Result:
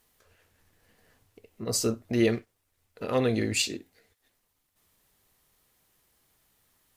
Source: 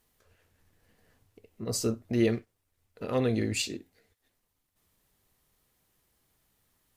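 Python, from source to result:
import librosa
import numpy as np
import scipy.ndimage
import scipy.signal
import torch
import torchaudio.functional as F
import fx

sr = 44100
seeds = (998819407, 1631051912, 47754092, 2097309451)

y = fx.low_shelf(x, sr, hz=390.0, db=-5.0)
y = F.gain(torch.from_numpy(y), 4.5).numpy()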